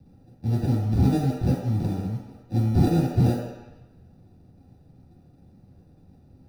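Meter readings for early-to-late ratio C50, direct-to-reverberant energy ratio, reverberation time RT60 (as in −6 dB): 2.0 dB, −8.0 dB, 1.0 s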